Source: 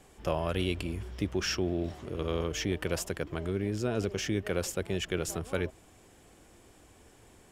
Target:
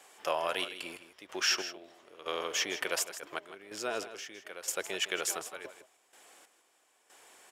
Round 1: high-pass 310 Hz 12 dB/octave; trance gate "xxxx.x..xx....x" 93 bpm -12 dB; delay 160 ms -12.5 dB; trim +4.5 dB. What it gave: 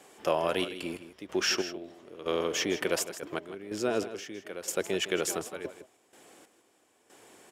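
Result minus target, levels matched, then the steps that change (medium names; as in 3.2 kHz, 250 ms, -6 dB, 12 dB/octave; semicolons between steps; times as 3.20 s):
250 Hz band +9.5 dB
change: high-pass 740 Hz 12 dB/octave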